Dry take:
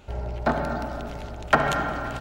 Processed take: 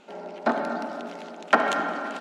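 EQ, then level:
linear-phase brick-wall high-pass 180 Hz
Bessel low-pass filter 8,600 Hz, order 6
0.0 dB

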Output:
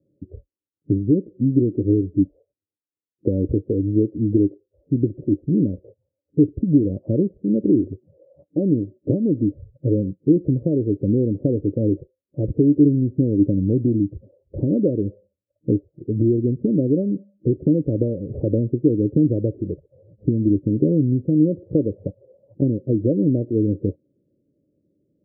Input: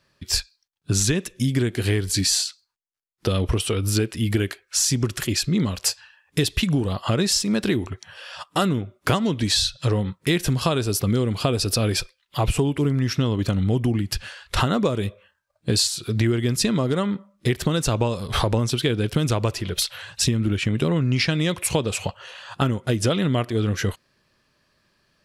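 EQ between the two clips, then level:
high-pass filter 92 Hz
Chebyshev low-pass filter 560 Hz, order 6
parametric band 300 Hz +13 dB 0.27 octaves
+1.5 dB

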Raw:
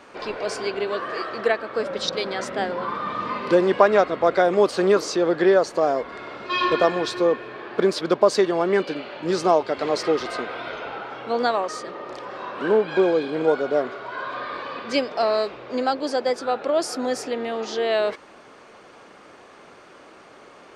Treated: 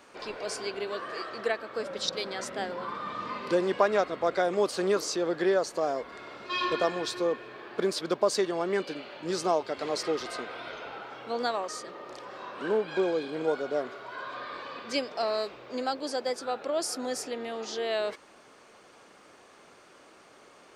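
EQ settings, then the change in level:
high-shelf EQ 5,600 Hz +12 dB
−8.5 dB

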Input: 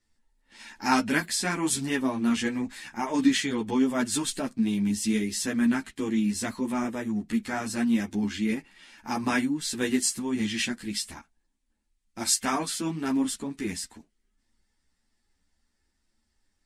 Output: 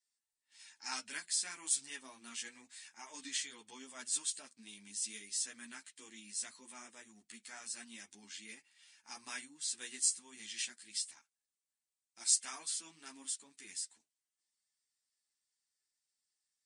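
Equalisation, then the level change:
linear-phase brick-wall low-pass 10,000 Hz
first difference
low-shelf EQ 82 Hz +5 dB
−4.5 dB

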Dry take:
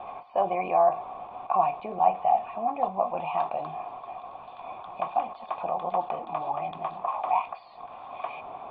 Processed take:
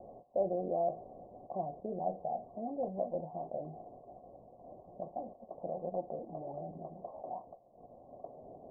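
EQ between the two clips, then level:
elliptic low-pass filter 570 Hz, stop band 80 dB
−1.0 dB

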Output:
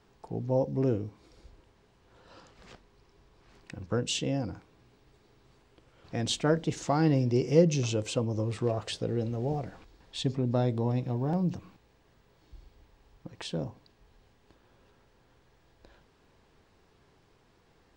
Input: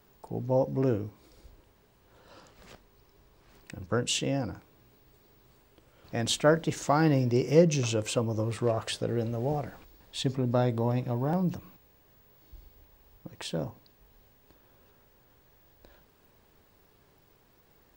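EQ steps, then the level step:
low-pass filter 7,000 Hz 12 dB per octave
notch filter 590 Hz, Q 15
dynamic equaliser 1,400 Hz, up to −6 dB, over −45 dBFS, Q 0.81
0.0 dB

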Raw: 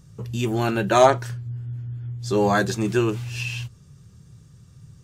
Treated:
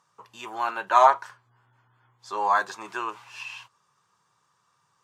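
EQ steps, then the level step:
resonant band-pass 1,000 Hz, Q 4.5
spectral tilt +4 dB per octave
+8.0 dB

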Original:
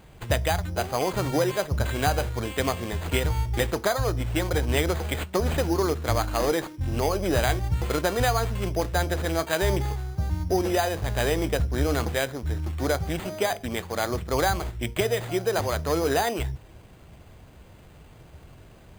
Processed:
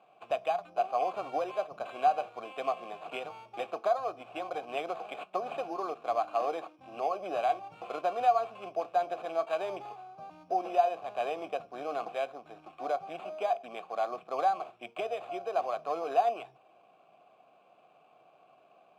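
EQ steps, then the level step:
formant filter a
high-pass filter 150 Hz 24 dB per octave
+3.5 dB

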